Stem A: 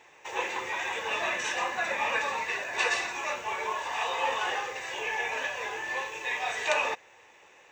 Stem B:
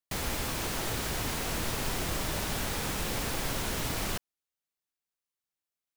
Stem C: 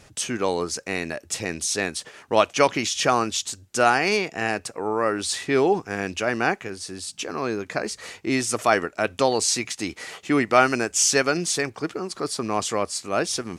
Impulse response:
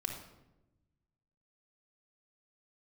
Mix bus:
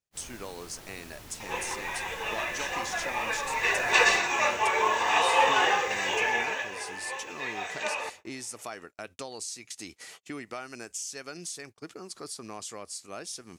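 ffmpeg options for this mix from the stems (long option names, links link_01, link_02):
-filter_complex "[0:a]dynaudnorm=framelen=100:gausssize=5:maxgain=9.5dB,adelay=1150,volume=-3.5dB,afade=type=in:start_time=3.48:duration=0.21:silence=0.334965,afade=type=out:start_time=6.08:duration=0.63:silence=0.281838,asplit=2[link_01][link_02];[link_02]volume=-16.5dB[link_03];[1:a]volume=-15dB[link_04];[2:a]highshelf=frequency=4200:gain=11.5,acompressor=threshold=-23dB:ratio=5,volume=-13dB[link_05];[3:a]atrim=start_sample=2205[link_06];[link_03][link_06]afir=irnorm=-1:irlink=0[link_07];[link_01][link_04][link_05][link_07]amix=inputs=4:normalize=0,agate=range=-32dB:threshold=-47dB:ratio=16:detection=peak"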